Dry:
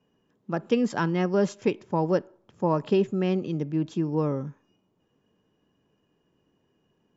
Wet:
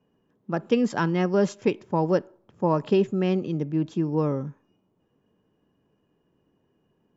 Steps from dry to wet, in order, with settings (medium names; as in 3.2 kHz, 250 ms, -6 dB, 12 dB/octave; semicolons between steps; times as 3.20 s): tape noise reduction on one side only decoder only; trim +1.5 dB